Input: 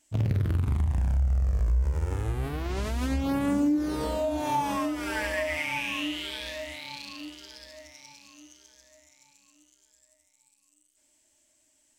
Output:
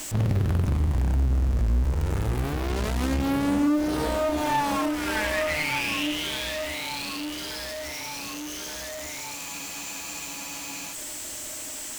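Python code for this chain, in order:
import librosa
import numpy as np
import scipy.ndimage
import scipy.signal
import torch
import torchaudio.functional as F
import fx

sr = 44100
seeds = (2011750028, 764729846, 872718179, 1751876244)

y = x + 0.5 * 10.0 ** (-30.0 / 20.0) * np.sign(x)
y = fx.cheby_harmonics(y, sr, harmonics=(6,), levels_db=(-15,), full_scale_db=-14.0)
y = fx.spec_freeze(y, sr, seeds[0], at_s=9.37, hold_s=1.55)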